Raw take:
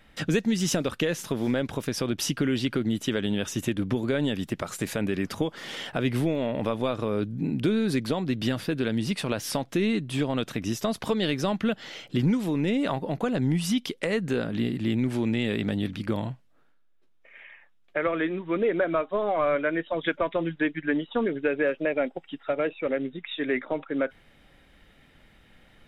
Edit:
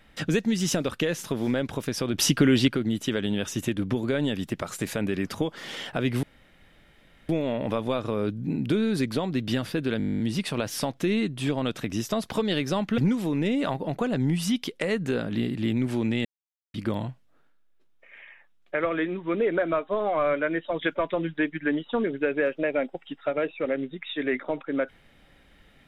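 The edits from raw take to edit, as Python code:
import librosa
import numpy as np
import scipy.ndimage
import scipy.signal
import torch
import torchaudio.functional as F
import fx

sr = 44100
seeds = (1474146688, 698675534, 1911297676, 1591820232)

y = fx.edit(x, sr, fx.clip_gain(start_s=2.14, length_s=0.54, db=6.0),
    fx.insert_room_tone(at_s=6.23, length_s=1.06),
    fx.stutter(start_s=8.92, slice_s=0.02, count=12),
    fx.cut(start_s=11.7, length_s=0.5),
    fx.silence(start_s=15.47, length_s=0.49), tone=tone)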